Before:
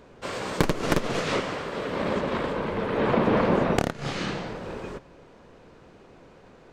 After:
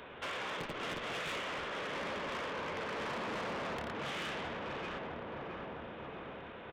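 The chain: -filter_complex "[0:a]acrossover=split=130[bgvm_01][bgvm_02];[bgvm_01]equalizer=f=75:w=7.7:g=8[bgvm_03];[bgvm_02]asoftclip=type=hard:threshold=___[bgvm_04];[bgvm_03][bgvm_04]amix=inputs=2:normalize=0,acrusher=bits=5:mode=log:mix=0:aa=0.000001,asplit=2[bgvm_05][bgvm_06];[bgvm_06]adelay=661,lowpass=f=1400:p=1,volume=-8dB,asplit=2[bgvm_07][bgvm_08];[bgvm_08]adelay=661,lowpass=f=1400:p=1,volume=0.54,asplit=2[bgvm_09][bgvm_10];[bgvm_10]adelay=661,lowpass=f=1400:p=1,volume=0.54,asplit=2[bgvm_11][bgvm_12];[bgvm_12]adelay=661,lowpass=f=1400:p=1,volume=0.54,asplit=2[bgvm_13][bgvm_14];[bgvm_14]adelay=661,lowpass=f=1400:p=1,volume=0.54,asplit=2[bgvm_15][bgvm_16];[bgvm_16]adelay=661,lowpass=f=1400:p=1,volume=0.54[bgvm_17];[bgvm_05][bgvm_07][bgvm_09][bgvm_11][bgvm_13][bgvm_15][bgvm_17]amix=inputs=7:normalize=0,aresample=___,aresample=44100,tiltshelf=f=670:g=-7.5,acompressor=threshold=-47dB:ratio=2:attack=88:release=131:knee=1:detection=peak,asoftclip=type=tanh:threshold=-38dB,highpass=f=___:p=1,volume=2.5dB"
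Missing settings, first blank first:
-21.5dB, 8000, 51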